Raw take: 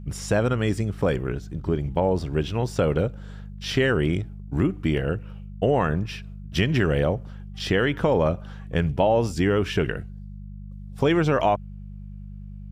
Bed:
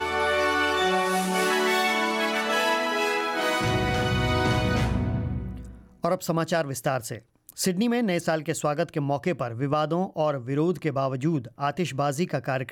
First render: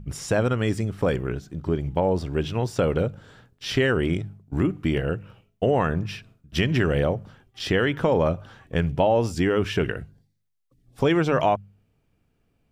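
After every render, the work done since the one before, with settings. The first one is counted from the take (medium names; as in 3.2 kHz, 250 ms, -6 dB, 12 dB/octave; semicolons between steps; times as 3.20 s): de-hum 50 Hz, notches 4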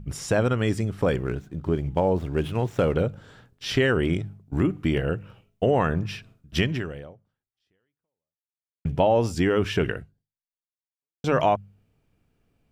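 1.18–2.95 s: median filter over 9 samples; 6.62–8.85 s: fade out exponential; 9.95–11.24 s: fade out exponential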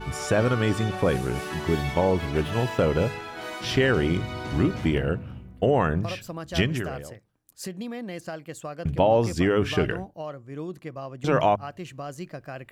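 add bed -10.5 dB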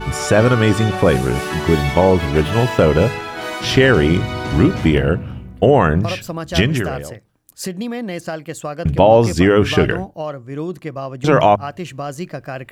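trim +9.5 dB; peak limiter -1 dBFS, peak gain reduction 2.5 dB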